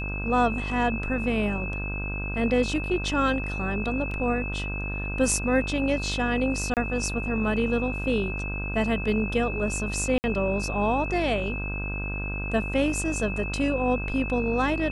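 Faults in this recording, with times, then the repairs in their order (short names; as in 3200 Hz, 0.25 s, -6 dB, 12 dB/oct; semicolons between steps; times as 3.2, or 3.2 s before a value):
buzz 50 Hz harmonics 32 -32 dBFS
tone 2600 Hz -33 dBFS
4.11 gap 3 ms
6.74–6.77 gap 28 ms
10.18–10.24 gap 59 ms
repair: notch 2600 Hz, Q 30; de-hum 50 Hz, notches 32; interpolate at 4.11, 3 ms; interpolate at 6.74, 28 ms; interpolate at 10.18, 59 ms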